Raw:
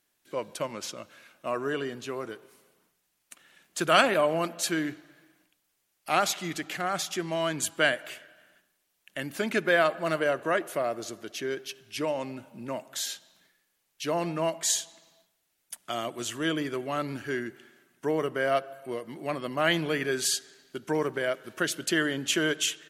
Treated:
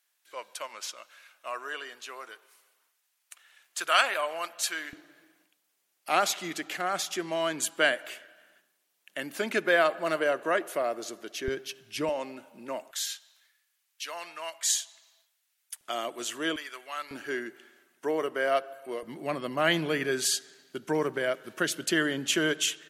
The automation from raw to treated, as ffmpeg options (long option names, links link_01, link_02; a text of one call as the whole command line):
ffmpeg -i in.wav -af "asetnsamples=nb_out_samples=441:pad=0,asendcmd='4.93 highpass f 260;11.48 highpass f 85;12.09 highpass f 320;12.91 highpass f 1300;15.81 highpass f 330;16.56 highpass f 1200;17.11 highpass f 320;19.03 highpass f 120',highpass=930" out.wav